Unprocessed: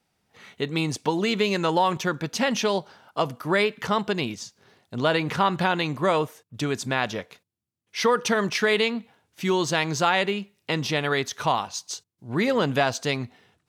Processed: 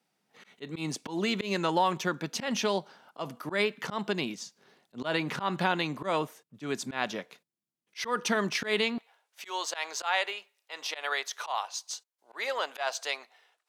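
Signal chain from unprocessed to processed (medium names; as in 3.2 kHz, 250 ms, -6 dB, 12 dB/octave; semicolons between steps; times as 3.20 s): high-pass 160 Hz 24 dB/octave, from 8.98 s 570 Hz; dynamic bell 470 Hz, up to -5 dB, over -40 dBFS, Q 8; slow attack 111 ms; trim -4 dB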